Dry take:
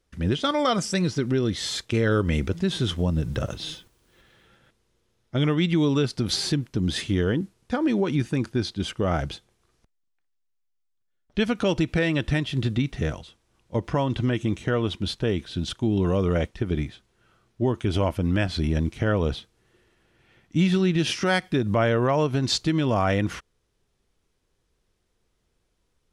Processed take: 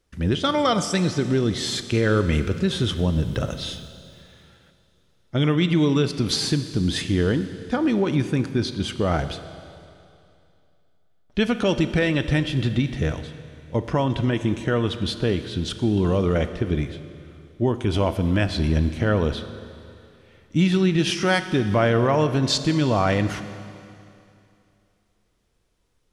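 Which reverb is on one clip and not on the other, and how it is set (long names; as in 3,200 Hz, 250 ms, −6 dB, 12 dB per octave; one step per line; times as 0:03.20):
four-comb reverb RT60 2.6 s, combs from 26 ms, DRR 10.5 dB
level +2 dB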